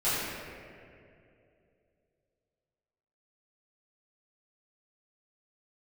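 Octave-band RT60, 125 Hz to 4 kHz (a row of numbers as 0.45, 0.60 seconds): 3.0, 2.9, 3.1, 2.1, 2.2, 1.4 seconds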